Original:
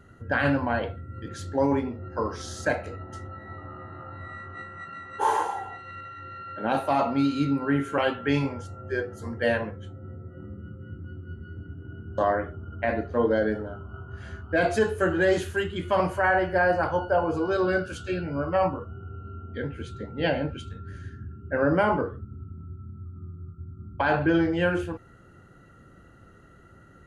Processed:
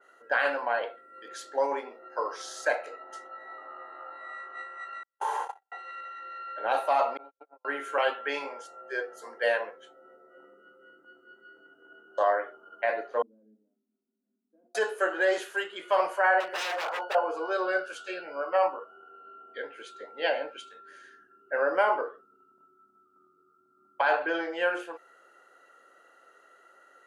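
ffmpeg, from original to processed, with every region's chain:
-filter_complex "[0:a]asettb=1/sr,asplit=3[s0][s1][s2];[s0]atrim=end=5.034[s3];[s1]atrim=start=5.03:end=5.72,asetpts=PTS-STARTPTS,afade=t=in:d=0.004:c=qsin,afade=t=out:st=0.686:d=0.004:c=qsin,agate=range=0.00316:threshold=0.0355:ratio=16:release=100:detection=peak,acompressor=threshold=0.0282:ratio=2:attack=3.2:release=140:knee=1:detection=peak[s4];[s2]atrim=start=5.716[s5];[s3][s4]acrossfade=d=0.004:c1=hsin:c2=qsin[s6];[s6][s5]acrossfade=d=0.004:c1=qsin:c2=hsin,asettb=1/sr,asplit=3[s7][s8][s9];[s7]atrim=end=7.174[s10];[s8]atrim=start=7.17:end=7.65,asetpts=PTS-STARTPTS,afade=t=in:d=0.004:c=qsin,afade=t=out:st=0.476:d=0.004:c=qsin,agate=range=0.00447:threshold=0.0794:ratio=16:release=100:detection=peak,asuperpass=centerf=760:order=4:qfactor=1.3,aemphasis=mode=reproduction:type=bsi[s11];[s9]atrim=start=7.646[s12];[s10][s11]acrossfade=d=0.004:c1=hsin:c2=qsin[s13];[s13][s12]acrossfade=d=0.004:c1=qsin:c2=hsin,asettb=1/sr,asplit=3[s14][s15][s16];[s14]atrim=end=13.224[s17];[s15]atrim=start=13.22:end=14.75,asetpts=PTS-STARTPTS,afade=t=in:d=0.004:c=qsin,afade=t=out:st=1.526:d=0.004:c=qsin,aeval=exprs='0.158*(abs(mod(val(0)/0.158+3,4)-2)-1)':c=same,asuperpass=centerf=230:order=4:qfactor=5.3[s18];[s16]atrim=start=14.746[s19];[s17][s18]acrossfade=d=0.004:c1=hsin:c2=qsin[s20];[s20][s19]acrossfade=d=0.004:c1=qsin:c2=hsin,asettb=1/sr,asplit=3[s21][s22][s23];[s21]atrim=end=16.404[s24];[s22]atrim=start=16.4:end=17.15,asetpts=PTS-STARTPTS,afade=t=in:d=0.004:c=qsin,afade=t=out:st=0.746:d=0.004:c=qsin,highpass=55,aeval=exprs='0.0562*(abs(mod(val(0)/0.0562+3,4)-2)-1)':c=same[s25];[s23]atrim=start=17.146[s26];[s24][s25]acrossfade=d=0.004:c1=hsin:c2=qsin[s27];[s27][s26]acrossfade=d=0.004:c1=qsin:c2=hsin,highpass=f=490:w=0.5412,highpass=f=490:w=1.3066,adynamicequalizer=threshold=0.00794:dfrequency=2700:dqfactor=0.7:tfrequency=2700:tqfactor=0.7:attack=5:release=100:ratio=0.375:range=2:mode=cutabove:tftype=highshelf"

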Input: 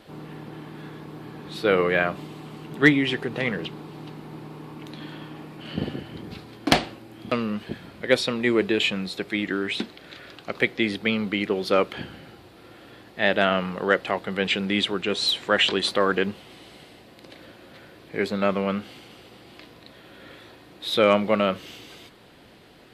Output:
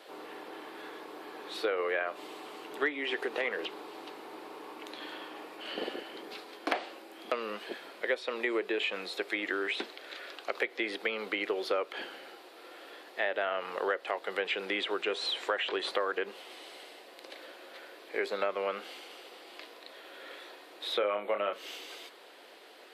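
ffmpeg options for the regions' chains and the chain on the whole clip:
-filter_complex "[0:a]asettb=1/sr,asplit=3[s0][s1][s2];[s0]atrim=end=20.984[s3];[s1]atrim=start=20.98:end=21.53,asetpts=PTS-STARTPTS,afade=t=in:d=0.004:c=qsin,afade=t=out:st=0.546:d=0.004:c=qsin,asuperstop=centerf=5400:order=4:qfactor=1.2,asplit=2[s4][s5];[s5]adelay=29,volume=0.447[s6];[s4][s6]amix=inputs=2:normalize=0,atrim=end_sample=24255[s7];[s2]atrim=start=21.526[s8];[s3][s7]acrossfade=d=0.004:c1=hsin:c2=qsin[s9];[s9][s8]acrossfade=d=0.004:c1=qsin:c2=hsin,acrossover=split=2700[s10][s11];[s11]acompressor=threshold=0.0112:ratio=4:attack=1:release=60[s12];[s10][s12]amix=inputs=2:normalize=0,highpass=f=390:w=0.5412,highpass=f=390:w=1.3066,acompressor=threshold=0.0398:ratio=6"

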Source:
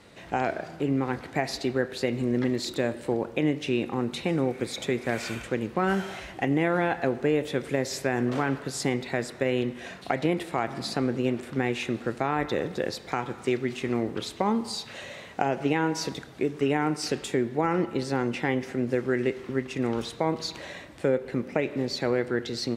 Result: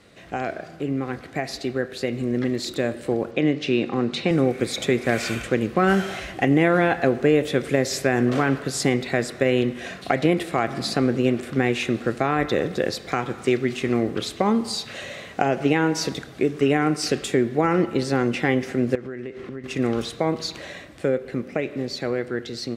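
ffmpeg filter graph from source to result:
-filter_complex "[0:a]asettb=1/sr,asplit=3[s0][s1][s2];[s0]atrim=end=3.314[s3];[s1]atrim=start=3.31:end=4.31,asetpts=PTS-STARTPTS,afade=t=in:d=0.004:c=qsin,afade=t=out:st=0.996:d=0.004:c=qsin,highpass=110,lowpass=5900,equalizer=f=4500:t=o:w=0.38:g=4[s4];[s2]atrim=start=4.306[s5];[s3][s4]acrossfade=d=0.004:c1=hsin:c2=qsin[s6];[s6][s5]acrossfade=d=0.004:c1=qsin:c2=hsin,asettb=1/sr,asplit=3[s7][s8][s9];[s7]atrim=end=18.954[s10];[s8]atrim=start=18.95:end=19.64,asetpts=PTS-STARTPTS,afade=t=in:d=0.004:c=qsin,afade=t=out:st=0.686:d=0.004:c=qsin,lowpass=f=3100:p=1,acompressor=threshold=0.0158:ratio=5:attack=3.2:release=140:knee=1:detection=peak[s11];[s9]atrim=start=19.636[s12];[s10][s11]acrossfade=d=0.004:c1=hsin:c2=qsin[s13];[s13][s12]acrossfade=d=0.004:c1=qsin:c2=hsin,bandreject=f=910:w=5.4,dynaudnorm=f=740:g=9:m=2.37"

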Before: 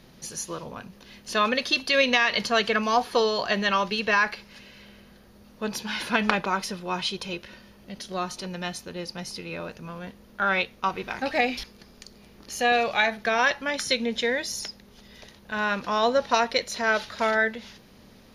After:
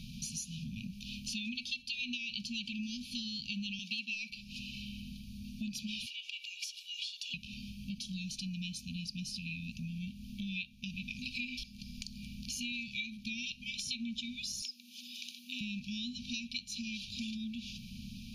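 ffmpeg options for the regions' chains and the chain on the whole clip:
-filter_complex "[0:a]asettb=1/sr,asplit=3[s0][s1][s2];[s0]atrim=end=3.794[s3];[s1]atrim=start=3.79:end=4.3,asetpts=PTS-STARTPTS,afade=t=in:d=0.004:c=qsin,afade=t=out:st=0.506:d=0.004:c=qsin,agate=range=0.0224:threshold=0.0178:ratio=3:release=100:detection=peak,highpass=f=420:t=q:w=2,acontrast=23[s4];[s2]atrim=start=4.296[s5];[s3][s4]acrossfade=d=0.004:c1=hsin:c2=qsin[s6];[s6][s5]acrossfade=d=0.004:c1=qsin:c2=hsin,asettb=1/sr,asplit=3[s7][s8][s9];[s7]atrim=end=6.064[s10];[s8]atrim=start=6.06:end=7.34,asetpts=PTS-STARTPTS,afade=t=in:d=0.004:c=qsin,afade=t=out:st=1.276:d=0.004:c=qsin,asubboost=boost=10.5:cutoff=120,acompressor=threshold=0.0224:ratio=5:attack=3.2:release=140:knee=1:detection=peak,afreqshift=320[s11];[s9]atrim=start=7.336[s12];[s10][s11]acrossfade=d=0.004:c1=hsin:c2=qsin[s13];[s13][s12]acrossfade=d=0.004:c1=qsin:c2=hsin,asettb=1/sr,asplit=3[s14][s15][s16];[s14]atrim=end=14.624[s17];[s15]atrim=start=14.62:end=15.61,asetpts=PTS-STARTPTS,afade=t=in:d=0.004:c=qsin,afade=t=out:st=0.986:d=0.004:c=qsin,highpass=f=260:w=0.5412,highpass=f=260:w=1.3066,highshelf=f=12000:g=7.5,afreqshift=40[s18];[s16]atrim=start=15.606[s19];[s17][s18]acrossfade=d=0.004:c1=hsin:c2=qsin[s20];[s20][s19]acrossfade=d=0.004:c1=qsin:c2=hsin,afftfilt=real='re*(1-between(b*sr/4096,250,2300))':imag='im*(1-between(b*sr/4096,250,2300))':win_size=4096:overlap=0.75,highshelf=f=7700:g=-9,acompressor=threshold=0.00447:ratio=5,volume=2.51"

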